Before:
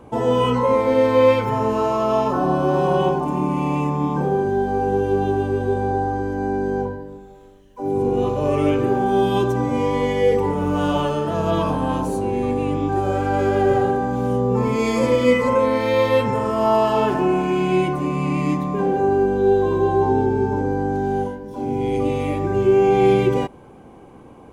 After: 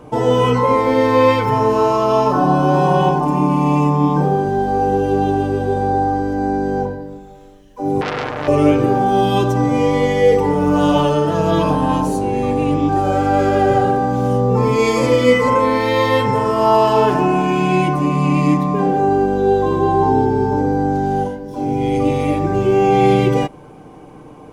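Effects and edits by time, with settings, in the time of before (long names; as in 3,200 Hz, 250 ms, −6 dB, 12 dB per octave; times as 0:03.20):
0:08.01–0:08.48: saturating transformer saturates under 2,300 Hz
whole clip: parametric band 5,300 Hz +4 dB 0.44 octaves; comb filter 6.6 ms, depth 45%; level +4 dB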